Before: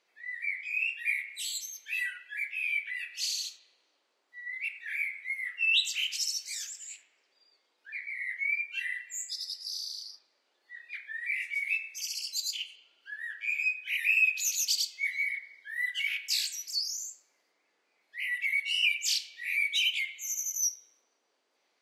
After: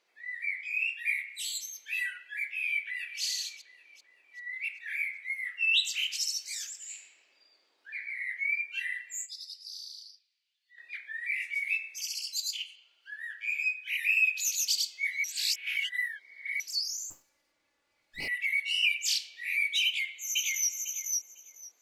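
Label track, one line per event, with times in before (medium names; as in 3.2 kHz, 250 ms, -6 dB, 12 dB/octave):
0.880000	1.420000	high-pass 600 Hz -> 1.2 kHz
2.670000	3.220000	echo throw 390 ms, feedback 50%, level -14.5 dB
4.440000	5.910000	bass shelf 350 Hz -7.5 dB
6.780000	7.950000	reverb throw, RT60 1.8 s, DRR 2 dB
9.260000	10.780000	ladder high-pass 2.3 kHz, resonance 40%
12.210000	14.580000	high-pass 1.1 kHz 6 dB/octave
15.240000	16.600000	reverse
17.100000	18.280000	comb filter that takes the minimum delay 3.5 ms
19.850000	20.710000	echo throw 500 ms, feedback 15%, level -2 dB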